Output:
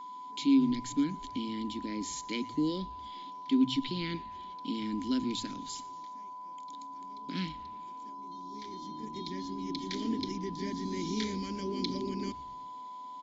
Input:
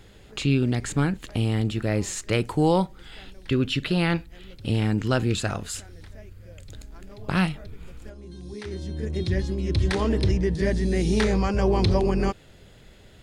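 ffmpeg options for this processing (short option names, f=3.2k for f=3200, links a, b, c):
-filter_complex "[0:a]acrossover=split=230|1200|2700[a][b][c][d];[d]aexciter=amount=13.5:drive=6.9:freq=3.8k[e];[a][b][c][e]amix=inputs=4:normalize=0,asplit=3[f][g][h];[f]bandpass=f=270:t=q:w=8,volume=0dB[i];[g]bandpass=f=2.29k:t=q:w=8,volume=-6dB[j];[h]bandpass=f=3.01k:t=q:w=8,volume=-9dB[k];[i][j][k]amix=inputs=3:normalize=0,highshelf=f=2.6k:g=-9.5,aeval=exprs='val(0)+0.00631*sin(2*PI*1000*n/s)':c=same,afftfilt=real='re*between(b*sr/4096,140,7500)':imag='im*between(b*sr/4096,140,7500)':win_size=4096:overlap=0.75,asplit=6[l][m][n][o][p][q];[m]adelay=117,afreqshift=-130,volume=-21dB[r];[n]adelay=234,afreqshift=-260,volume=-25.2dB[s];[o]adelay=351,afreqshift=-390,volume=-29.3dB[t];[p]adelay=468,afreqshift=-520,volume=-33.5dB[u];[q]adelay=585,afreqshift=-650,volume=-37.6dB[v];[l][r][s][t][u][v]amix=inputs=6:normalize=0,volume=2.5dB"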